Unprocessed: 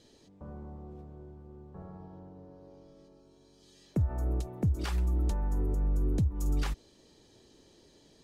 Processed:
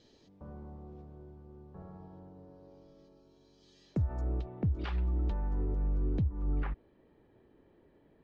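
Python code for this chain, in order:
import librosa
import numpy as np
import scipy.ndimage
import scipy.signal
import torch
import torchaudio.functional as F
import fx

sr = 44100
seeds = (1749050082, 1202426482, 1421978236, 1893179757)

y = fx.lowpass(x, sr, hz=fx.steps((0.0, 5900.0), (4.21, 3600.0), (6.23, 2100.0)), slope=24)
y = y * 10.0 ** (-2.5 / 20.0)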